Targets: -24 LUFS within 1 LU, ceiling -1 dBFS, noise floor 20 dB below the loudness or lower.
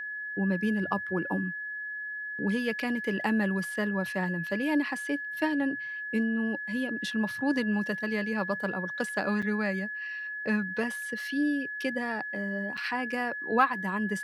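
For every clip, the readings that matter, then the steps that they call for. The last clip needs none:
dropouts 2; longest dropout 5.8 ms; steady tone 1.7 kHz; tone level -34 dBFS; loudness -30.0 LUFS; peak level -11.5 dBFS; loudness target -24.0 LUFS
-> interpolate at 9.42/12.77 s, 5.8 ms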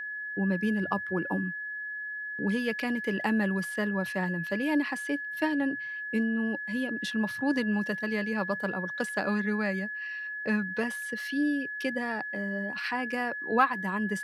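dropouts 0; steady tone 1.7 kHz; tone level -34 dBFS
-> band-stop 1.7 kHz, Q 30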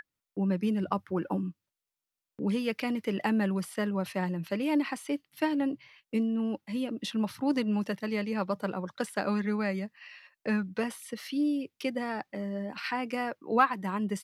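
steady tone not found; loudness -31.5 LUFS; peak level -12.0 dBFS; loudness target -24.0 LUFS
-> trim +7.5 dB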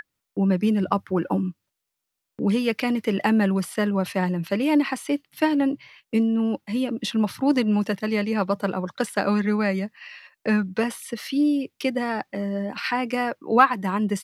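loudness -24.0 LUFS; peak level -4.5 dBFS; noise floor -82 dBFS

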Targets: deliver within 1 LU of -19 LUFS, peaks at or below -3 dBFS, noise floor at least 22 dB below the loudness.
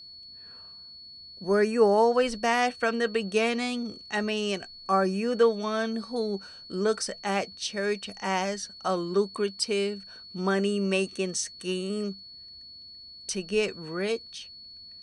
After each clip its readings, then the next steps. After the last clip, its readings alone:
steady tone 4.4 kHz; tone level -44 dBFS; loudness -27.5 LUFS; peak level -11.0 dBFS; loudness target -19.0 LUFS
-> band-stop 4.4 kHz, Q 30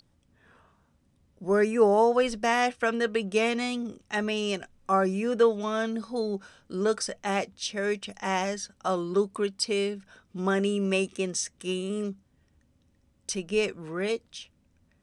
steady tone not found; loudness -28.0 LUFS; peak level -11.0 dBFS; loudness target -19.0 LUFS
-> trim +9 dB; peak limiter -3 dBFS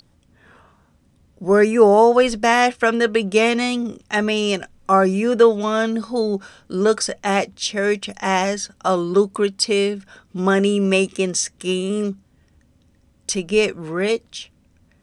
loudness -19.0 LUFS; peak level -3.0 dBFS; noise floor -58 dBFS

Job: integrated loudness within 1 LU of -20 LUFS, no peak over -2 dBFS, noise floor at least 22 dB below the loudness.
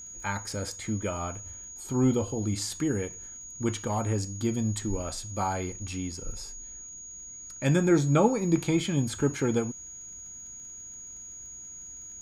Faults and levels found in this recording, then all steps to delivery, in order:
tick rate 22 per s; steady tone 6.7 kHz; tone level -41 dBFS; loudness -29.0 LUFS; peak level -10.0 dBFS; loudness target -20.0 LUFS
-> de-click; band-stop 6.7 kHz, Q 30; trim +9 dB; peak limiter -2 dBFS

